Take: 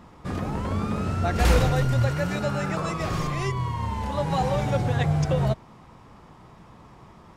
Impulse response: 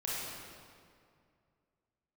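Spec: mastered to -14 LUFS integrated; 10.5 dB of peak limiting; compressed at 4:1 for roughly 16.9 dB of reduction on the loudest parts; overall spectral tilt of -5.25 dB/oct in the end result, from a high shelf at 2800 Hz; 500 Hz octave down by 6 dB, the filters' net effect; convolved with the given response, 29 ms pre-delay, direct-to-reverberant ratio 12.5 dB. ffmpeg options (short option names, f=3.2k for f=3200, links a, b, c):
-filter_complex "[0:a]equalizer=f=500:t=o:g=-7.5,highshelf=f=2.8k:g=7.5,acompressor=threshold=-36dB:ratio=4,alimiter=level_in=9.5dB:limit=-24dB:level=0:latency=1,volume=-9.5dB,asplit=2[a][b];[1:a]atrim=start_sample=2205,adelay=29[c];[b][c]afir=irnorm=-1:irlink=0,volume=-17dB[d];[a][d]amix=inputs=2:normalize=0,volume=29dB"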